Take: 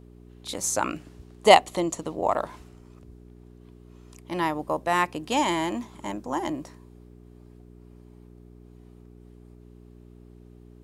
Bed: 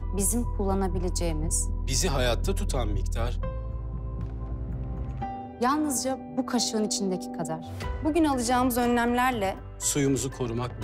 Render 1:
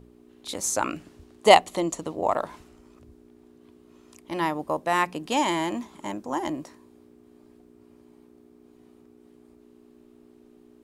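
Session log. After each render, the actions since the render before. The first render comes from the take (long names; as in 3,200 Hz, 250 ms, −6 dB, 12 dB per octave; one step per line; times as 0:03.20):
hum removal 60 Hz, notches 3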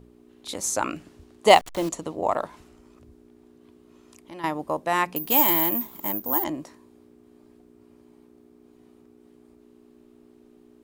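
0:01.49–0:01.89: hold until the input has moved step −33 dBFS
0:02.46–0:04.44: downward compressor 2 to 1, threshold −45 dBFS
0:05.16–0:06.44: bad sample-rate conversion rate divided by 3×, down none, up zero stuff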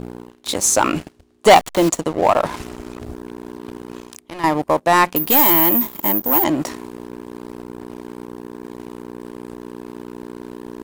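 reversed playback
upward compression, threshold −28 dBFS
reversed playback
leveller curve on the samples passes 3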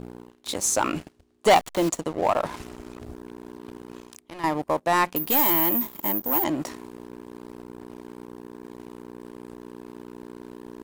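level −7.5 dB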